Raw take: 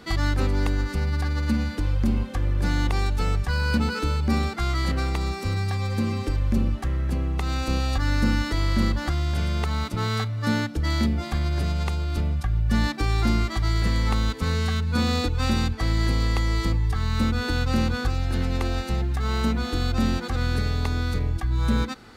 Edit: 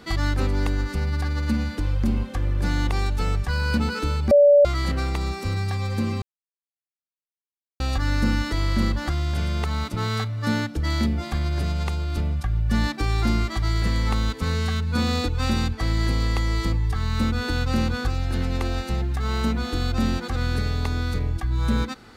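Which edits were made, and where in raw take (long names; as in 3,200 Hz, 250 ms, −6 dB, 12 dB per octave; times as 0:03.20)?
0:04.31–0:04.65: beep over 577 Hz −10 dBFS
0:06.22–0:07.80: silence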